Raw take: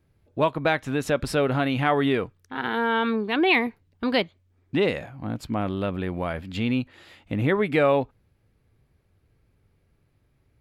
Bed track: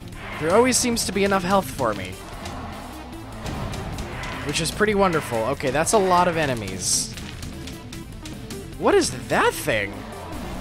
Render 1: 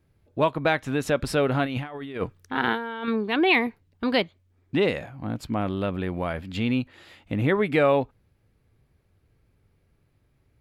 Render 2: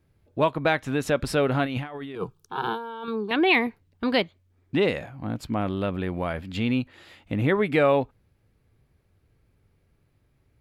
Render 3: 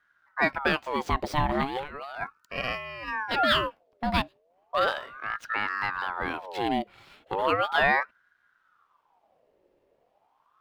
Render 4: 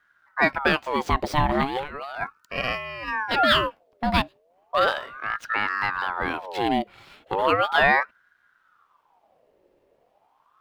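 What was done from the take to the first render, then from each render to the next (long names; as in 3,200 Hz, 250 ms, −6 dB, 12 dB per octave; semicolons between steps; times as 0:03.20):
0:01.65–0:03.08: compressor whose output falls as the input rises −28 dBFS, ratio −0.5
0:02.15–0:03.31: phaser with its sweep stopped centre 390 Hz, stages 8
running median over 5 samples; ring modulator whose carrier an LFO sweeps 1,000 Hz, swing 55%, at 0.36 Hz
level +4 dB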